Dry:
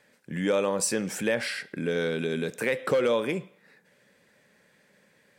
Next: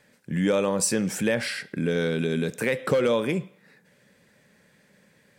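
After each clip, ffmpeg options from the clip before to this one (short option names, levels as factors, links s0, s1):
-af "bass=f=250:g=7,treble=f=4000:g=2,volume=1.12"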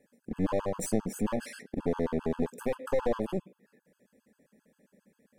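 -af "equalizer=f=125:t=o:w=1:g=-11,equalizer=f=250:t=o:w=1:g=10,equalizer=f=500:t=o:w=1:g=3,equalizer=f=1000:t=o:w=1:g=-5,equalizer=f=2000:t=o:w=1:g=-6,equalizer=f=4000:t=o:w=1:g=-11,aeval=exprs='clip(val(0),-1,0.0282)':c=same,afftfilt=real='re*gt(sin(2*PI*7.5*pts/sr)*(1-2*mod(floor(b*sr/1024/860),2)),0)':imag='im*gt(sin(2*PI*7.5*pts/sr)*(1-2*mod(floor(b*sr/1024/860),2)),0)':win_size=1024:overlap=0.75,volume=0.668"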